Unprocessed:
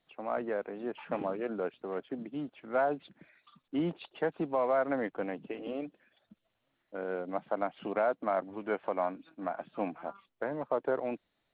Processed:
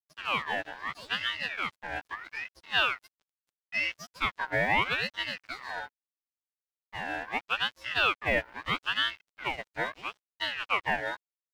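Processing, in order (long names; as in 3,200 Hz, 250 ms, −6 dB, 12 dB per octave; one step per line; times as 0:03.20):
every partial snapped to a pitch grid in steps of 3 semitones
dead-zone distortion −48 dBFS
ring modulator whose carrier an LFO sweeps 1,800 Hz, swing 35%, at 0.77 Hz
level +5 dB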